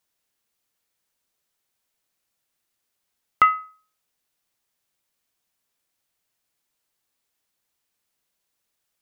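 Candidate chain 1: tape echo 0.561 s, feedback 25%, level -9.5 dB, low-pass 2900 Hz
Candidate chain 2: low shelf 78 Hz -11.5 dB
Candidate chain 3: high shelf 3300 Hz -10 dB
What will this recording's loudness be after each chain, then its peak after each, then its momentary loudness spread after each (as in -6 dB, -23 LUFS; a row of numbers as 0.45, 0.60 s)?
-24.0, -21.0, -22.5 LUFS; -4.5, -4.5, -6.5 dBFS; 14, 8, 8 LU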